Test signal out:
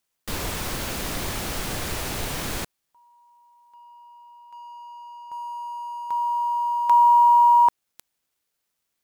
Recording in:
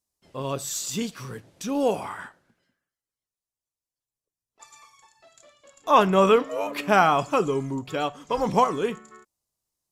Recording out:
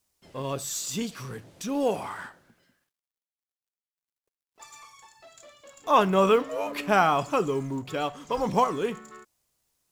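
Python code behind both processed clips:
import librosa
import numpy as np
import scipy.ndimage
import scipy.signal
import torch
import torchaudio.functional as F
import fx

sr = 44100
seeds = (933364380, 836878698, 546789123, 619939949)

y = fx.law_mismatch(x, sr, coded='mu')
y = y * 10.0 ** (-3.0 / 20.0)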